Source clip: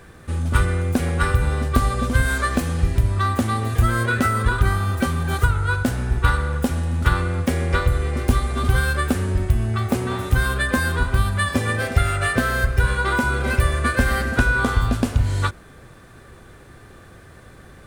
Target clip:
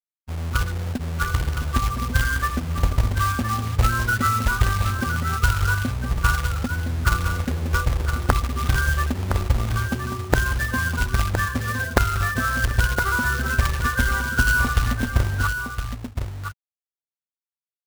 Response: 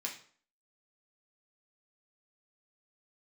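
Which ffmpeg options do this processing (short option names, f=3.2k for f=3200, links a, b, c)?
-filter_complex "[0:a]afftfilt=real='re*gte(hypot(re,im),0.141)':imag='im*gte(hypot(re,im),0.141)':win_size=1024:overlap=0.75,equalizer=f=570:t=o:w=2.3:g=-9.5,dynaudnorm=f=280:g=13:m=4dB,aeval=exprs='(mod(1.5*val(0)+1,2)-1)/1.5':c=same,lowpass=f=1.4k:t=q:w=2.2,acrusher=bits=2:mode=log:mix=0:aa=0.000001,asplit=2[a][b];[b]aecho=0:1:1014:0.422[c];[a][c]amix=inputs=2:normalize=0,volume=-5dB"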